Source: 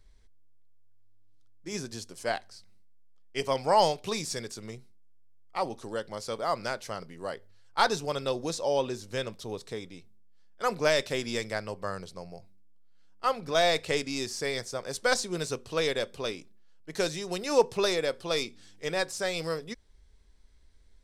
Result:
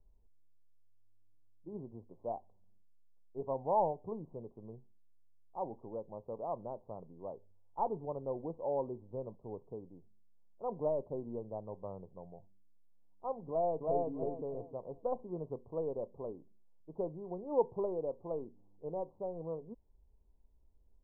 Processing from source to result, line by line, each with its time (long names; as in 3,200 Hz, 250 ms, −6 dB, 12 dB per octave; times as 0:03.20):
0:13.48–0:14.09: delay throw 320 ms, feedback 30%, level −1.5 dB
whole clip: Butterworth low-pass 1,000 Hz 72 dB per octave; level −7.5 dB